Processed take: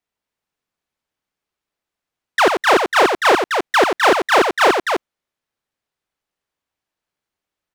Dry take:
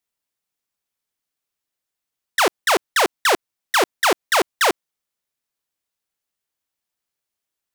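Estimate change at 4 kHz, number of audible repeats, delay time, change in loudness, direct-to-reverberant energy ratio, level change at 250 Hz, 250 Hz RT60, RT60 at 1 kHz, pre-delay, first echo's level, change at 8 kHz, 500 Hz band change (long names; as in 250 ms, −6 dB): +1.0 dB, 2, 90 ms, +4.0 dB, no reverb audible, +6.5 dB, no reverb audible, no reverb audible, no reverb audible, −6.5 dB, −4.0 dB, +6.5 dB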